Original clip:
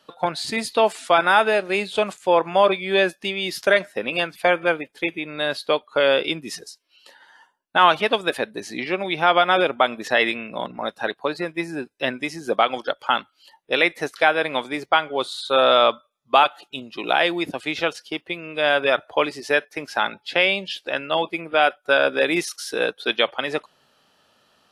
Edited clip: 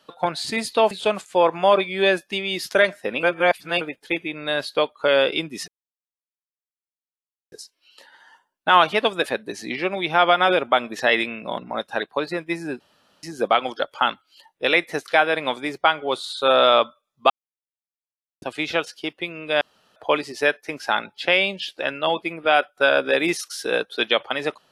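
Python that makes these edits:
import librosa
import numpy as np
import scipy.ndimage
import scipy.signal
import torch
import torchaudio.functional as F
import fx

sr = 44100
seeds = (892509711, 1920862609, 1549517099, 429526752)

y = fx.edit(x, sr, fx.cut(start_s=0.91, length_s=0.92),
    fx.reverse_span(start_s=4.15, length_s=0.58),
    fx.insert_silence(at_s=6.6, length_s=1.84),
    fx.room_tone_fill(start_s=11.88, length_s=0.43),
    fx.silence(start_s=16.38, length_s=1.12),
    fx.room_tone_fill(start_s=18.69, length_s=0.35), tone=tone)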